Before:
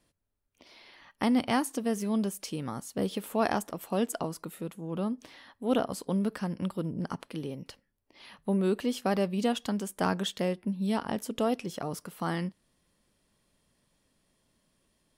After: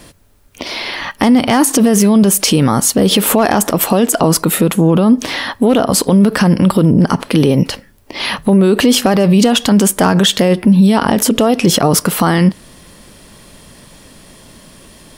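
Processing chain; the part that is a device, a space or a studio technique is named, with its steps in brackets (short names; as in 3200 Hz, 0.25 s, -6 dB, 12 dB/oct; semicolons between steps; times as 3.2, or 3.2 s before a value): loud club master (compressor 2:1, threshold -30 dBFS, peak gain reduction 6 dB; hard clip -21.5 dBFS, distortion -28 dB; maximiser +33 dB); gain -1 dB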